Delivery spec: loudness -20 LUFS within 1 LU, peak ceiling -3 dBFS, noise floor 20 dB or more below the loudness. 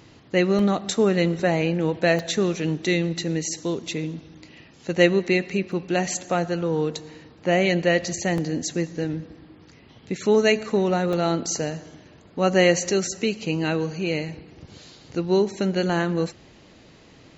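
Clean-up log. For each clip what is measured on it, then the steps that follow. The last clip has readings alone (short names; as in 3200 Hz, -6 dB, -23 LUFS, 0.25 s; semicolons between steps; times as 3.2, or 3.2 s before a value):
dropouts 5; longest dropout 2.0 ms; loudness -23.5 LUFS; peak -3.0 dBFS; loudness target -20.0 LUFS
-> interpolate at 0.59/2.19/5.72/8.38/11.13, 2 ms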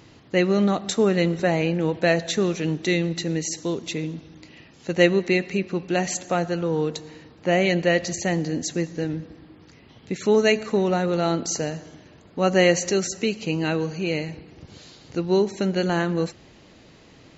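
dropouts 0; loudness -23.5 LUFS; peak -3.0 dBFS; loudness target -20.0 LUFS
-> gain +3.5 dB; limiter -3 dBFS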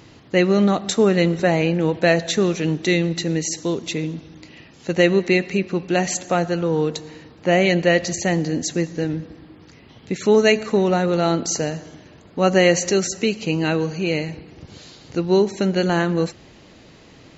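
loudness -20.0 LUFS; peak -3.0 dBFS; noise floor -47 dBFS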